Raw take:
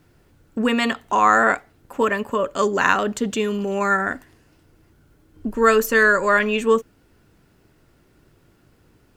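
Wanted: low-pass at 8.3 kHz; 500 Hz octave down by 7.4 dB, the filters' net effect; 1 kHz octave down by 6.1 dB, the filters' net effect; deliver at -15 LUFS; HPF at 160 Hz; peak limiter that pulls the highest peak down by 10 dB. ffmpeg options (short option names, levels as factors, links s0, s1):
-af "highpass=160,lowpass=8300,equalizer=f=500:t=o:g=-7.5,equalizer=f=1000:t=o:g=-6.5,volume=3.76,alimiter=limit=0.668:level=0:latency=1"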